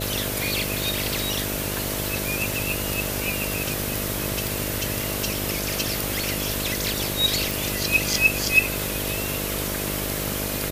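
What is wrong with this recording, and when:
mains buzz 50 Hz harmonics 13 −31 dBFS
0:04.47: click
0:07.51: click

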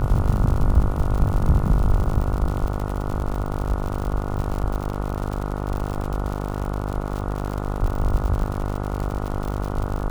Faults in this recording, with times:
mains buzz 50 Hz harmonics 29 −27 dBFS
surface crackle 110 per second −27 dBFS

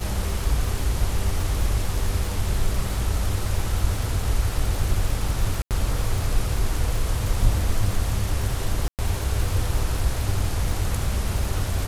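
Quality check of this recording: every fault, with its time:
surface crackle 110 per second −29 dBFS
0:05.62–0:05.71: drop-out 88 ms
0:08.88–0:08.99: drop-out 108 ms

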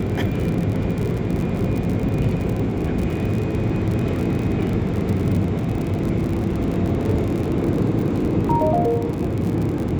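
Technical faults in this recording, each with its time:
surface crackle 49 per second −24 dBFS

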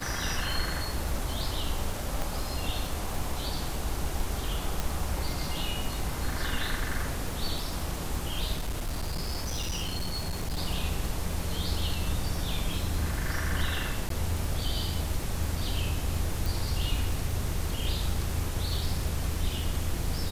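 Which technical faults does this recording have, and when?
surface crackle 97 per second −34 dBFS
0:02.22: click
0:04.80: click
0:08.53–0:10.59: clipping −27.5 dBFS
0:14.09–0:14.10: drop-out 13 ms
0:16.46: click

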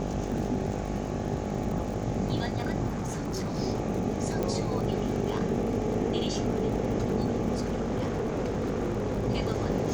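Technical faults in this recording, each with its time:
mains buzz 50 Hz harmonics 17 −34 dBFS
surface crackle 54 per second −36 dBFS
0:02.88–0:03.59: clipping −28.5 dBFS
0:04.43: click
0:07.56–0:09.26: clipping −25 dBFS

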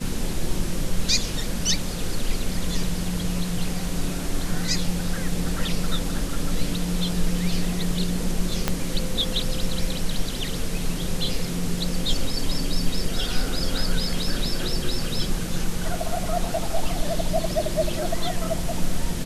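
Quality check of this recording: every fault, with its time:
0:08.68: click −6 dBFS

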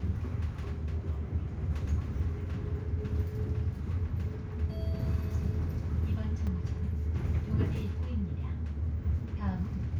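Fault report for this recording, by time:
0:06.47: drop-out 4.7 ms

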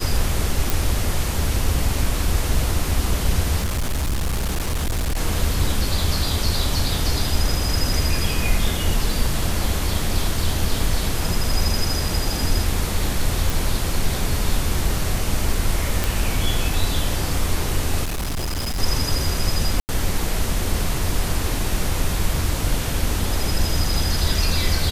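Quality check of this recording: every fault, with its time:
0:00.70: click
0:03.59–0:05.18: clipping −18.5 dBFS
0:13.50: click
0:16.04: click
0:18.04–0:18.80: clipping −21.5 dBFS
0:19.80–0:19.89: drop-out 89 ms

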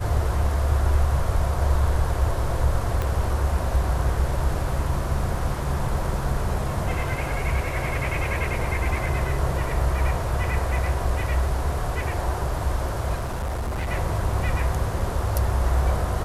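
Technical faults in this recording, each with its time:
0:03.02: click −13 dBFS
0:13.14–0:13.90: clipping −24 dBFS

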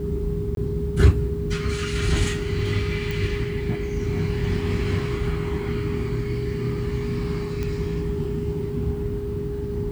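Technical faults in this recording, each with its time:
whistle 410 Hz −29 dBFS
0:00.55–0:00.57: drop-out 22 ms
0:03.11: click
0:07.63: click −16 dBFS

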